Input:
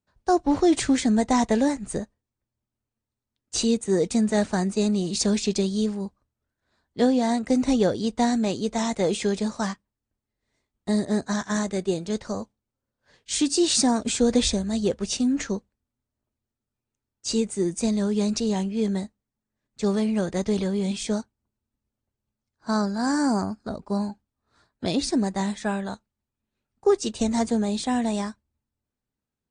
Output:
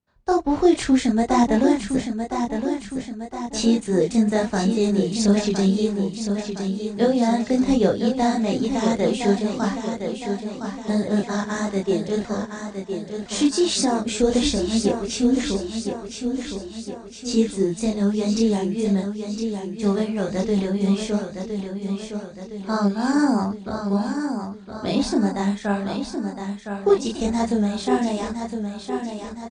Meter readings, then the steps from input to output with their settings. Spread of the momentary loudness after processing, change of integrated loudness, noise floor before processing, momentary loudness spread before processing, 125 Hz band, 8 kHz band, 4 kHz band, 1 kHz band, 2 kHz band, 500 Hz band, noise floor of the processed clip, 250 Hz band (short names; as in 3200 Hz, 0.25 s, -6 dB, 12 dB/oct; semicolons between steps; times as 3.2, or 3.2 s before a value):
11 LU, +2.0 dB, under -85 dBFS, 11 LU, +4.0 dB, -1.5 dB, +1.0 dB, +3.5 dB, +3.0 dB, +3.5 dB, -38 dBFS, +3.5 dB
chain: high shelf 6500 Hz -9.5 dB; chorus voices 2, 1.4 Hz, delay 28 ms, depth 3 ms; on a send: feedback echo 1.013 s, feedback 52%, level -7 dB; on the sum: gain +5.5 dB